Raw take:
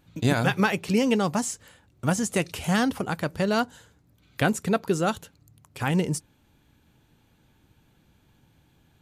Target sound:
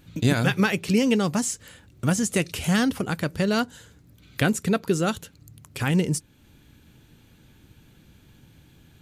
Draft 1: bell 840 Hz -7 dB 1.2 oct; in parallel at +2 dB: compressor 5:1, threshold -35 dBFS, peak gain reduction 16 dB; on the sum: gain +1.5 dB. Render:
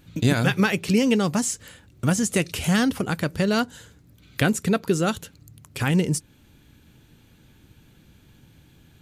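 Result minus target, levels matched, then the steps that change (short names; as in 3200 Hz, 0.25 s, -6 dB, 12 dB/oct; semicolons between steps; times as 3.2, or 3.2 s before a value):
compressor: peak gain reduction -6 dB
change: compressor 5:1, threshold -42.5 dBFS, peak gain reduction 22 dB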